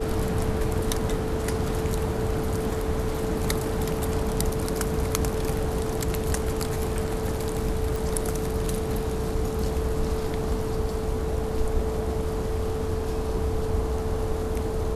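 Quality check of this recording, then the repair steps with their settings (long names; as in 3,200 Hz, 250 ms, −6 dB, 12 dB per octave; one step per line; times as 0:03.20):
whistle 440 Hz −30 dBFS
0:07.96: click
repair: click removal
notch filter 440 Hz, Q 30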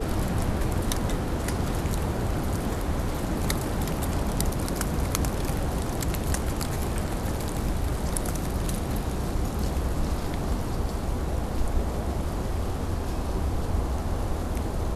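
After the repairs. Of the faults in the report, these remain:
none of them is left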